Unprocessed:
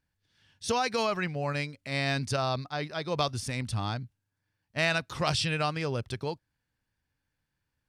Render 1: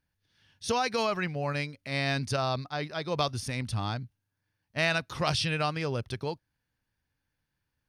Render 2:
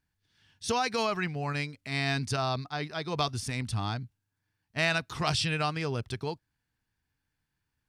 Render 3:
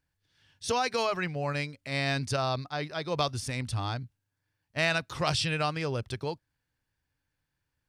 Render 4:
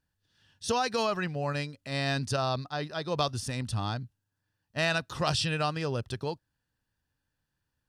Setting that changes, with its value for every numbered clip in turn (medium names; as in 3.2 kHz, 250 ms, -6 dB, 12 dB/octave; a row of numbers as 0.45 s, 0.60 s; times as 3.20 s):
band-stop, frequency: 7.6 kHz, 550 Hz, 210 Hz, 2.2 kHz